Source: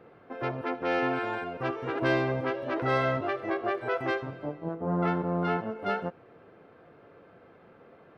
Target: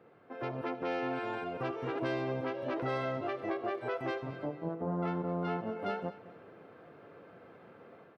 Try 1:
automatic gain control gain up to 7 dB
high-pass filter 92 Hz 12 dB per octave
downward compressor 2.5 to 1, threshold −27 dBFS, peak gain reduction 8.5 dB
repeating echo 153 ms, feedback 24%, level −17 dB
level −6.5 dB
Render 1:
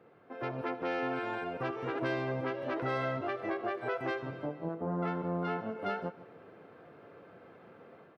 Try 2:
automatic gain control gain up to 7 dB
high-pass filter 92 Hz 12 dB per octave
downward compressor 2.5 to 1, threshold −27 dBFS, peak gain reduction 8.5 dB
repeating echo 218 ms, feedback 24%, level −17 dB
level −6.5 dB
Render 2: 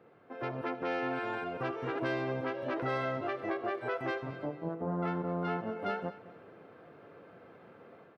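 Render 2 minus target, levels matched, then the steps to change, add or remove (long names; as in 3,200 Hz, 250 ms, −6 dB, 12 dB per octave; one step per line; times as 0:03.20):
2,000 Hz band +2.5 dB
add after downward compressor: dynamic equaliser 1,600 Hz, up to −4 dB, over −41 dBFS, Q 1.7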